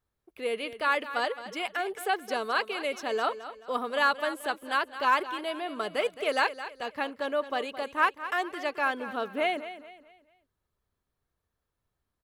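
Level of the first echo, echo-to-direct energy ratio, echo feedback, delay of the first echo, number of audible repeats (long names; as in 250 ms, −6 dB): −13.0 dB, −12.5 dB, 36%, 216 ms, 3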